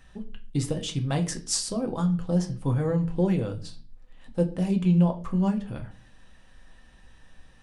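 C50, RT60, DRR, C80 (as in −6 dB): 15.0 dB, 0.40 s, 3.5 dB, 19.0 dB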